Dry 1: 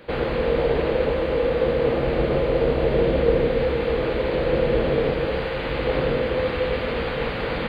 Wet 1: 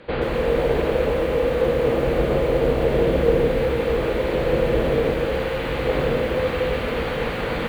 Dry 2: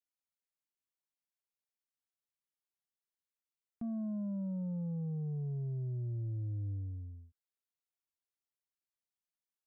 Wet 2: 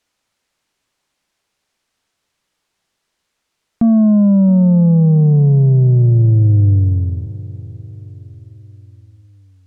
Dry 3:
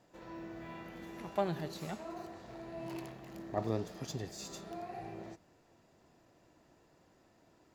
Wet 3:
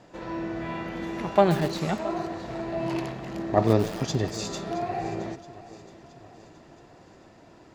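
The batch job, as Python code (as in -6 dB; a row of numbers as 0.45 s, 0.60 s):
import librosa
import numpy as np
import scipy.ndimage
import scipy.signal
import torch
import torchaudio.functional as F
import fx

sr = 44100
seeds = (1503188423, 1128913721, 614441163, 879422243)

y = fx.air_absorb(x, sr, metres=57.0)
y = fx.echo_feedback(y, sr, ms=671, feedback_pct=52, wet_db=-18.0)
y = fx.echo_crushed(y, sr, ms=131, feedback_pct=55, bits=6, wet_db=-13.5)
y = librosa.util.normalize(y) * 10.0 ** (-6 / 20.0)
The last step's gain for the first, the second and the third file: +1.0 dB, +27.0 dB, +14.0 dB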